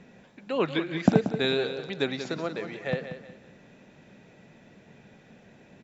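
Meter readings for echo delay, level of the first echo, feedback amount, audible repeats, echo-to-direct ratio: 183 ms, -10.0 dB, 33%, 3, -9.5 dB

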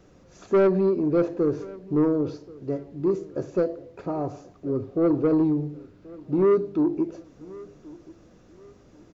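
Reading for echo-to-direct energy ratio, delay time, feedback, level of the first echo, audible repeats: -21.0 dB, 1081 ms, 32%, -21.5 dB, 2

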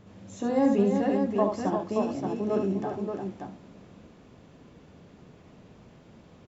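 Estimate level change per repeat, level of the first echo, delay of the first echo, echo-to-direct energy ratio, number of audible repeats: no regular repeats, -6.0 dB, 72 ms, -1.0 dB, 3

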